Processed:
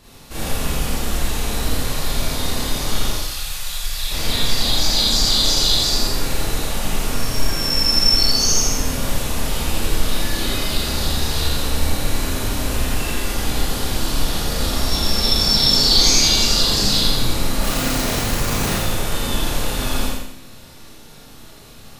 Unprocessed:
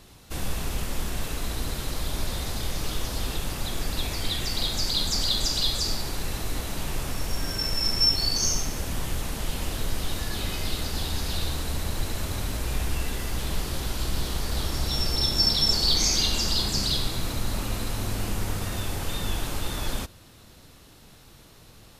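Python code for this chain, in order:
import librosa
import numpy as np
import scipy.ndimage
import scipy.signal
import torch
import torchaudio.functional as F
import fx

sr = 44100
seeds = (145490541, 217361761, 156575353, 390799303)

y = fx.tone_stack(x, sr, knobs='10-0-10', at=(3.11, 4.11))
y = fx.schmitt(y, sr, flips_db=-44.5, at=(17.62, 18.73))
y = fx.echo_feedback(y, sr, ms=85, feedback_pct=36, wet_db=-4)
y = fx.rev_schroeder(y, sr, rt60_s=0.55, comb_ms=27, drr_db=-6.5)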